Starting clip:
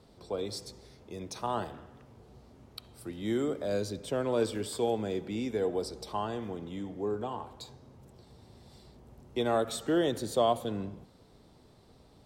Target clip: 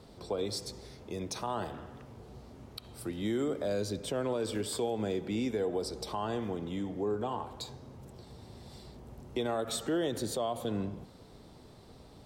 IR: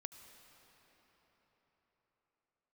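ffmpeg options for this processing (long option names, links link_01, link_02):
-filter_complex "[0:a]asplit=2[link_01][link_02];[link_02]acompressor=threshold=-42dB:ratio=6,volume=-2dB[link_03];[link_01][link_03]amix=inputs=2:normalize=0,alimiter=limit=-23.5dB:level=0:latency=1:release=79"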